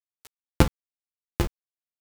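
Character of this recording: a buzz of ramps at a fixed pitch in blocks of 256 samples; tremolo saw up 11 Hz, depth 60%; a quantiser's noise floor 6-bit, dither none; a shimmering, thickened sound

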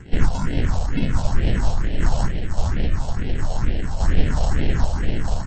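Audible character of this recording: aliases and images of a low sample rate 1.2 kHz, jitter 0%; random-step tremolo; phasing stages 4, 2.2 Hz, lowest notch 310–1200 Hz; MP3

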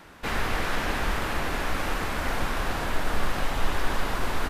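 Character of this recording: noise floor -39 dBFS; spectral tilt -4.0 dB/octave

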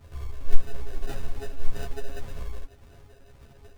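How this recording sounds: a buzz of ramps at a fixed pitch in blocks of 64 samples; phasing stages 4, 1.8 Hz, lowest notch 150–2300 Hz; aliases and images of a low sample rate 1.1 kHz, jitter 0%; a shimmering, thickened sound

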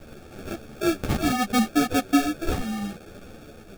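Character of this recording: a quantiser's noise floor 8-bit, dither triangular; phasing stages 2, 0.67 Hz, lowest notch 420–1300 Hz; aliases and images of a low sample rate 1 kHz, jitter 0%; a shimmering, thickened sound

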